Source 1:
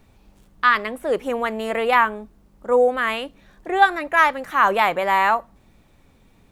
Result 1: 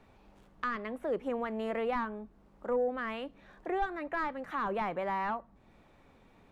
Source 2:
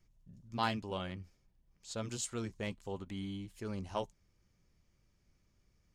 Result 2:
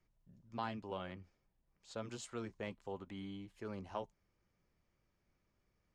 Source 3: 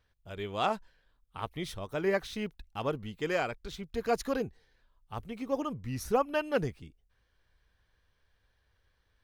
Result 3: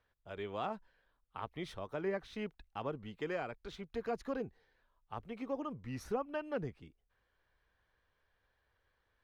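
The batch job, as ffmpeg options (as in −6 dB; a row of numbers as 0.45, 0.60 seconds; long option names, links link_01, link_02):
-filter_complex "[0:a]asplit=2[link_01][link_02];[link_02]highpass=frequency=720:poles=1,volume=12dB,asoftclip=type=tanh:threshold=-1.5dB[link_03];[link_01][link_03]amix=inputs=2:normalize=0,lowpass=frequency=1100:poles=1,volume=-6dB,acrossover=split=290[link_04][link_05];[link_05]acompressor=threshold=-36dB:ratio=2.5[link_06];[link_04][link_06]amix=inputs=2:normalize=0,volume=-4dB"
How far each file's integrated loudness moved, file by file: −15.5, −6.0, −7.5 LU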